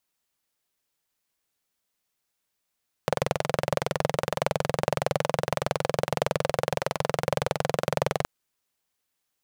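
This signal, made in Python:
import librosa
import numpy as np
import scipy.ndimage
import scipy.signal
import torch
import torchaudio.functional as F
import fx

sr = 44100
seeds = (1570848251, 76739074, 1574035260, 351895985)

y = fx.engine_single(sr, seeds[0], length_s=5.17, rpm=2600, resonances_hz=(150.0, 530.0))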